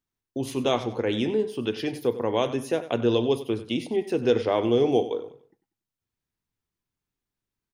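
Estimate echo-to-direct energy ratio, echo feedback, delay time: -14.0 dB, 33%, 95 ms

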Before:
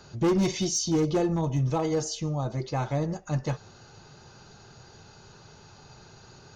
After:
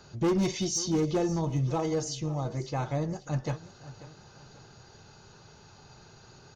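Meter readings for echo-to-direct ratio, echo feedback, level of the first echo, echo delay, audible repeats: -16.5 dB, 39%, -17.0 dB, 0.539 s, 3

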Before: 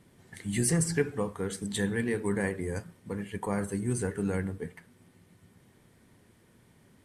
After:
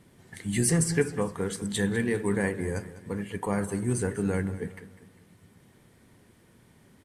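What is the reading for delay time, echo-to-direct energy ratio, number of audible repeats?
0.2 s, -14.5 dB, 3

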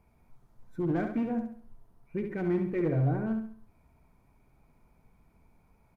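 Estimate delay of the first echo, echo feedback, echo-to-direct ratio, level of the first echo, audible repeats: 68 ms, 39%, -6.0 dB, -6.5 dB, 4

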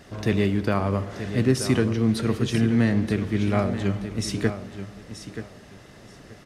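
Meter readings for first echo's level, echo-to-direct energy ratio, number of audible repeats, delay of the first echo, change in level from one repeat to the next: -11.0 dB, -11.0 dB, 2, 0.93 s, -14.0 dB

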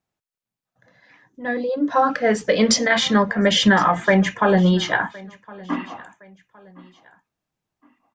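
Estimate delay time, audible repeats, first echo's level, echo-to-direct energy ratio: 1.064 s, 2, -22.5 dB, -22.0 dB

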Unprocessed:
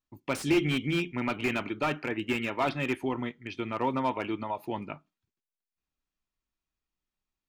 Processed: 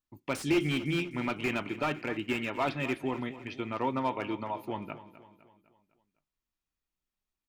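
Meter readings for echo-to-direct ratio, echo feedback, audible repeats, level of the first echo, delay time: -14.0 dB, 49%, 4, -15.0 dB, 0.253 s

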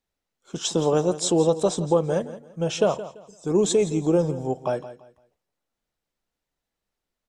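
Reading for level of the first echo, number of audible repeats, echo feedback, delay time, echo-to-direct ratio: -14.5 dB, 2, 27%, 0.169 s, -14.0 dB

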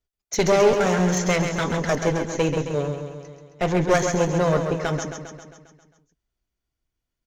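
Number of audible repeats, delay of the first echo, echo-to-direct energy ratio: 7, 0.134 s, -5.0 dB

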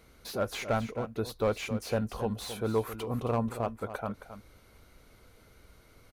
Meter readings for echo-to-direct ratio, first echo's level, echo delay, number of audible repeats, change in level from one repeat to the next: -11.5 dB, -11.5 dB, 0.269 s, 1, no steady repeat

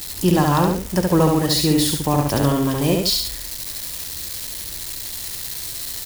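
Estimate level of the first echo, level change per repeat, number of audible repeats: -3.0 dB, -7.5 dB, 2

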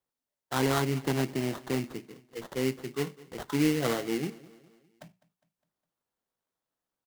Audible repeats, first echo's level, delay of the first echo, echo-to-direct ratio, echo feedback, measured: 3, -21.0 dB, 0.204 s, -20.0 dB, 49%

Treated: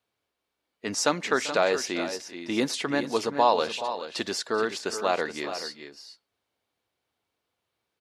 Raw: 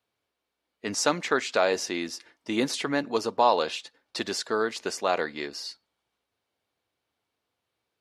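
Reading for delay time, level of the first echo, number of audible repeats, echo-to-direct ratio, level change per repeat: 0.39 s, -18.0 dB, 2, -10.0 dB, no steady repeat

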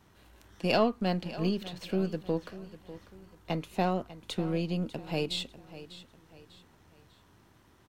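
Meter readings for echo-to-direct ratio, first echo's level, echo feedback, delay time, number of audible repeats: -15.0 dB, -15.5 dB, 37%, 0.596 s, 3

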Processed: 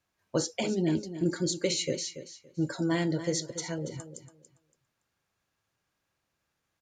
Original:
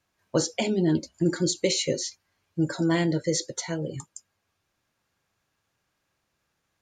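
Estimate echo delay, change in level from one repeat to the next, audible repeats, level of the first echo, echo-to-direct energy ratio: 0.283 s, -14.0 dB, 2, -12.0 dB, -12.0 dB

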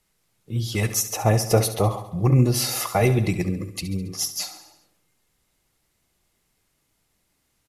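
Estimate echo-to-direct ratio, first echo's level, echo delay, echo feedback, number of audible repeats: -10.5 dB, -12.5 dB, 69 ms, 58%, 5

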